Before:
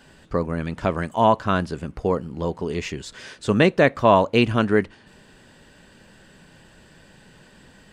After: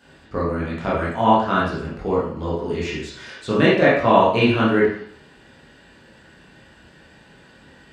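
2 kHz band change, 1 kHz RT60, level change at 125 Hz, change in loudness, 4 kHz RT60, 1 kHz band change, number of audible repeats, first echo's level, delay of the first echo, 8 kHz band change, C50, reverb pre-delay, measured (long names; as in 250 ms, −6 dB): +3.0 dB, 0.60 s, 0.0 dB, +2.0 dB, 0.60 s, +2.5 dB, no echo audible, no echo audible, no echo audible, can't be measured, 1.5 dB, 17 ms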